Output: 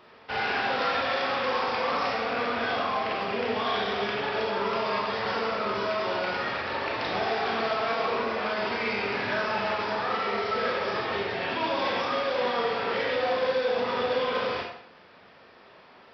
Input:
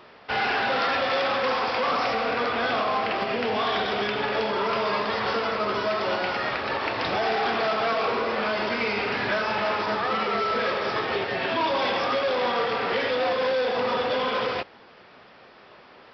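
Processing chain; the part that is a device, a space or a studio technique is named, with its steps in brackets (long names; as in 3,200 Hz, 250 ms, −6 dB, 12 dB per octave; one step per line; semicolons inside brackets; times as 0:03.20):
bathroom (convolution reverb RT60 0.65 s, pre-delay 28 ms, DRR 0.5 dB)
level −5.5 dB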